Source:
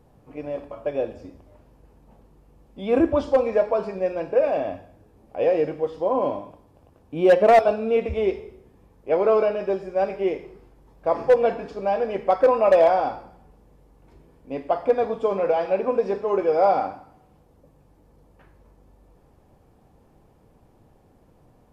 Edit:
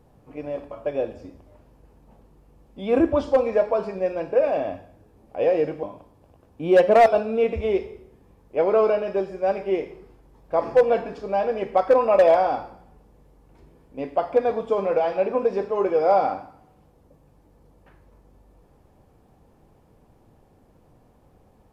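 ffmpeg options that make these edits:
-filter_complex "[0:a]asplit=2[a][b];[a]atrim=end=5.832[c];[b]atrim=start=6.358[d];[c][d]acrossfade=d=0.004:c1=hsin:c2=hsin"

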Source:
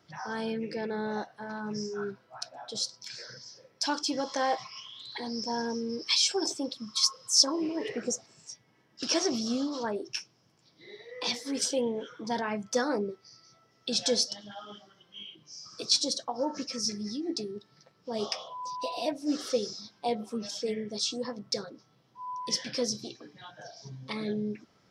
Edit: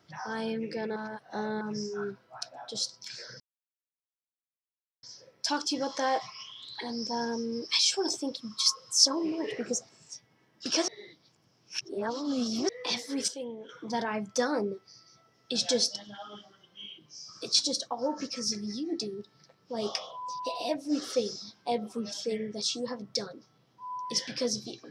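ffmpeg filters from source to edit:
-filter_complex "[0:a]asplit=8[a][b][c][d][e][f][g][h];[a]atrim=end=0.962[i];[b]atrim=start=0.958:end=1.612,asetpts=PTS-STARTPTS,areverse[j];[c]atrim=start=1.608:end=3.4,asetpts=PTS-STARTPTS,afade=t=out:st=1.788:d=0.004:c=hsin,apad=pad_dur=1.63[k];[d]atrim=start=3.4:end=9.252,asetpts=PTS-STARTPTS,afade=t=in:d=0.004:c=hsin[l];[e]atrim=start=9.248:end=11.062,asetpts=PTS-STARTPTS,areverse[m];[f]atrim=start=11.058:end=11.652[n];[g]atrim=start=11.648:end=12.062,asetpts=PTS-STARTPTS,volume=-9.5dB[o];[h]atrim=start=12.058[p];[i][j]acrossfade=d=0.004:c1=hsin:c2=hsin[q];[k][l]concat=n=2:v=0:a=1[r];[q][r]acrossfade=d=0.004:c1=hsin:c2=hsin[s];[s][m]acrossfade=d=0.004:c1=hsin:c2=hsin[t];[t][n]acrossfade=d=0.004:c1=hsin:c2=hsin[u];[u][o]acrossfade=d=0.004:c1=hsin:c2=hsin[v];[v][p]acrossfade=d=0.004:c1=hsin:c2=hsin"

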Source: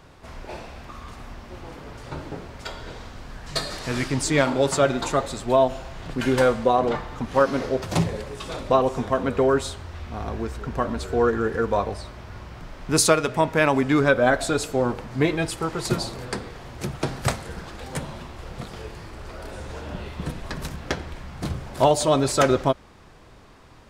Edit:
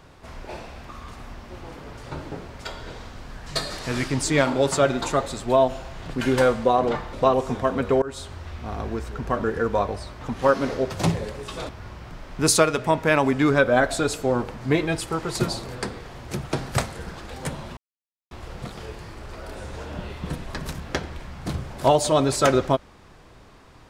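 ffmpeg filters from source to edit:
-filter_complex "[0:a]asplit=7[a][b][c][d][e][f][g];[a]atrim=end=7.132[h];[b]atrim=start=8.608:end=9.5,asetpts=PTS-STARTPTS,afade=t=out:st=0.888:d=0.004:c=hsin:silence=0.0891251[i];[c]atrim=start=9.5:end=10.922,asetpts=PTS-STARTPTS,afade=t=in:d=0.31:silence=0.0891251[j];[d]atrim=start=11.418:end=12.192[k];[e]atrim=start=7.128:end=8.612[l];[f]atrim=start=12.188:end=18.27,asetpts=PTS-STARTPTS,afade=t=out:st=6.078:d=0.004:c=hsin,apad=pad_dur=0.54[m];[g]atrim=start=18.27,asetpts=PTS-STARTPTS,afade=t=in:d=0.004:c=hsin[n];[i][j]concat=n=2:v=0:a=1[o];[h][o]acrossfade=d=0.004:c1=hsin:c2=hsin[p];[p][k]acrossfade=d=0.004:c1=hsin:c2=hsin[q];[q][l]acrossfade=d=0.004:c1=hsin:c2=hsin[r];[m][n]concat=n=2:v=0:a=1[s];[r][s]acrossfade=d=0.004:c1=hsin:c2=hsin"

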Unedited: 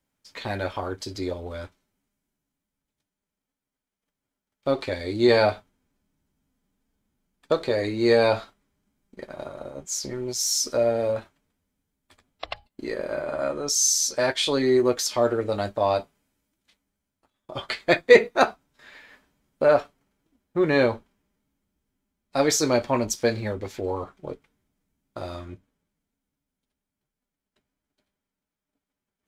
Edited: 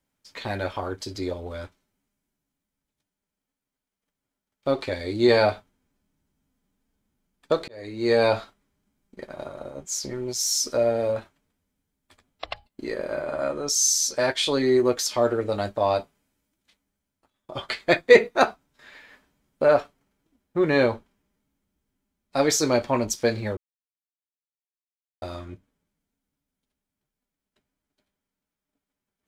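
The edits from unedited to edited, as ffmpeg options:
-filter_complex "[0:a]asplit=4[a][b][c][d];[a]atrim=end=7.68,asetpts=PTS-STARTPTS,afade=t=out:st=7.676:d=0.004:c=hsin[e];[b]atrim=start=7.68:end=23.57,asetpts=PTS-STARTPTS,afade=t=in:d=0.56,afade=t=out:st=15.886:d=0.004:c=hsin[f];[c]atrim=start=23.57:end=25.22,asetpts=PTS-STARTPTS,volume=0[g];[d]atrim=start=25.22,asetpts=PTS-STARTPTS,afade=t=in:d=0.004:c=hsin[h];[e][f][g][h]concat=n=4:v=0:a=1"

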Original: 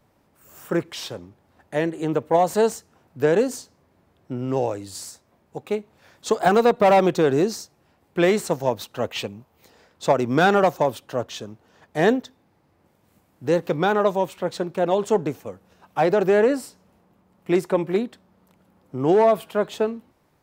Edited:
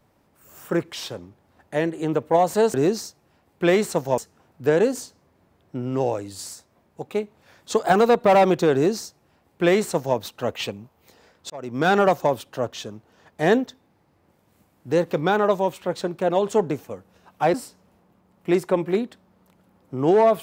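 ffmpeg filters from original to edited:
-filter_complex "[0:a]asplit=5[a][b][c][d][e];[a]atrim=end=2.742[f];[b]atrim=start=7.288:end=8.732[g];[c]atrim=start=2.738:end=10.06,asetpts=PTS-STARTPTS,afade=t=out:st=7.318:d=0.004:c=hsin[h];[d]atrim=start=10.06:end=16.102,asetpts=PTS-STARTPTS,afade=t=in:d=0.48[i];[e]atrim=start=16.548[j];[f][g]acrossfade=d=0.004:c1=hsin:c2=hsin[k];[h][i]concat=n=2:v=0:a=1[l];[k][l]acrossfade=d=0.004:c1=hsin:c2=hsin[m];[m][j]acrossfade=d=0.004:c1=hsin:c2=hsin"

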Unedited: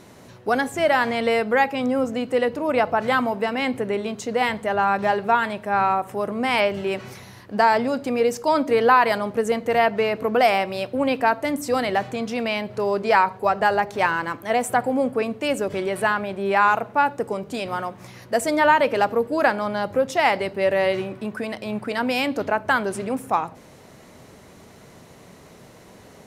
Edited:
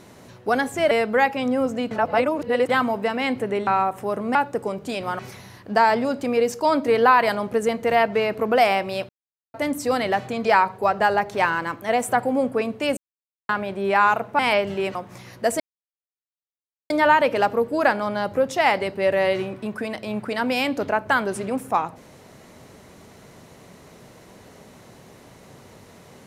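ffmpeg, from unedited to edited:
-filter_complex "[0:a]asplit=15[a][b][c][d][e][f][g][h][i][j][k][l][m][n][o];[a]atrim=end=0.912[p];[b]atrim=start=1.288:end=2.292[q];[c]atrim=start=2.288:end=3.072,asetpts=PTS-STARTPTS,areverse[r];[d]atrim=start=3.068:end=4.052[s];[e]atrim=start=5.778:end=6.462[t];[f]atrim=start=16.998:end=17.842[u];[g]atrim=start=7.018:end=10.92,asetpts=PTS-STARTPTS,afade=t=out:st=3.898:d=0.004:c=hsin[v];[h]atrim=start=10.92:end=11.37,asetpts=PTS-STARTPTS,volume=0[w];[i]atrim=start=11.37:end=12.282,asetpts=PTS-STARTPTS,afade=t=in:d=0.004:c=hsin[x];[j]atrim=start=13.058:end=15.58,asetpts=PTS-STARTPTS,afade=t=out:st=2.518:d=0.004:c=hsin[y];[k]atrim=start=15.58:end=16.1,asetpts=PTS-STARTPTS,volume=0[z];[l]atrim=start=16.1:end=17.002,asetpts=PTS-STARTPTS,afade=t=in:d=0.004:c=hsin[aa];[m]atrim=start=6.458:end=7.022[ab];[n]atrim=start=17.838:end=18.49,asetpts=PTS-STARTPTS,afade=t=out:st=0.648:d=0.004:c=hsin,apad=pad_dur=1.3[ac];[o]atrim=start=18.49,asetpts=PTS-STARTPTS,afade=t=in:d=0.004:c=hsin[ad];[p][q]acrossfade=d=0.004:c1=hsin:c2=hsin[ae];[ae][r]acrossfade=d=0.004:c1=hsin:c2=hsin[af];[af][s]acrossfade=d=0.004:c1=hsin:c2=hsin[ag];[ag][t]acrossfade=d=0.004:c1=hsin:c2=hsin[ah];[ah][u]acrossfade=d=0.004:c1=hsin:c2=hsin[ai];[v][w][x]concat=n=3:v=0:a=1[aj];[ai][aj]acrossfade=d=0.004:c1=hsin:c2=hsin[ak];[y][z][aa]concat=n=3:v=0:a=1[al];[ak][al]acrossfade=d=0.004:c1=hsin:c2=hsin[am];[am][ab]acrossfade=d=0.004:c1=hsin:c2=hsin[an];[ac][ad]concat=n=2:v=0:a=1[ao];[an][ao]acrossfade=d=0.004:c1=hsin:c2=hsin"

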